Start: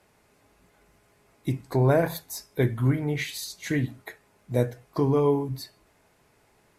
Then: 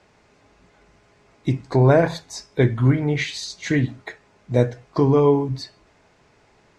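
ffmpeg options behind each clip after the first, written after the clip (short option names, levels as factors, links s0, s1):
-af "lowpass=f=6800:w=0.5412,lowpass=f=6800:w=1.3066,volume=2"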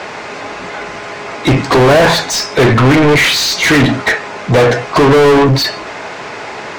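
-filter_complex "[0:a]asplit=2[s0][s1];[s1]highpass=f=720:p=1,volume=112,asoftclip=type=tanh:threshold=0.708[s2];[s0][s2]amix=inputs=2:normalize=0,lowpass=f=2700:p=1,volume=0.501,volume=1.26"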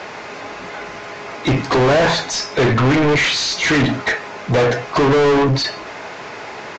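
-af "aresample=16000,aresample=44100,volume=0.501"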